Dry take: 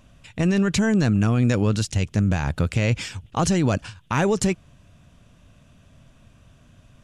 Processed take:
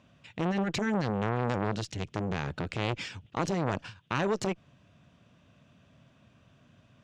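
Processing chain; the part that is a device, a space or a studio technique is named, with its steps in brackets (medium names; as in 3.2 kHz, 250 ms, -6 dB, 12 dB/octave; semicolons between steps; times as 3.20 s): valve radio (band-pass 120–4800 Hz; valve stage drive 12 dB, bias 0.5; transformer saturation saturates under 960 Hz); trim -2.5 dB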